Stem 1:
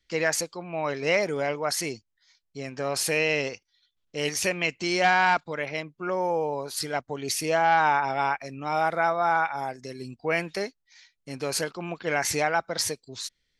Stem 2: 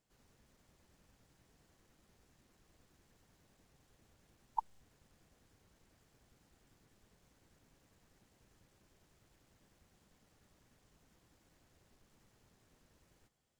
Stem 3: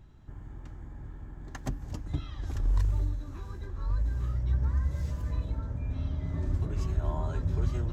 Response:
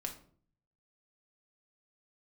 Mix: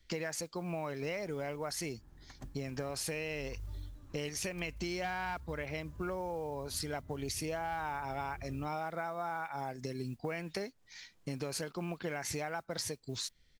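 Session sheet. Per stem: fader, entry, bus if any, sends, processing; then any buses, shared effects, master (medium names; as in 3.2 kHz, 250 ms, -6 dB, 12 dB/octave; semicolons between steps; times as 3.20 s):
+2.5 dB, 0.00 s, bus A, no send, no echo send, bass shelf 230 Hz +9.5 dB
-5.0 dB, 0.00 s, bus A, no send, echo send -23 dB, integer overflow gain 33 dB
-14.5 dB, 0.75 s, no bus, no send, no echo send, none
bus A: 0.0 dB, compression 1.5:1, threshold -37 dBFS, peak gain reduction 8.5 dB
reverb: none
echo: delay 186 ms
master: modulation noise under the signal 29 dB; compression 6:1, threshold -35 dBFS, peak gain reduction 12.5 dB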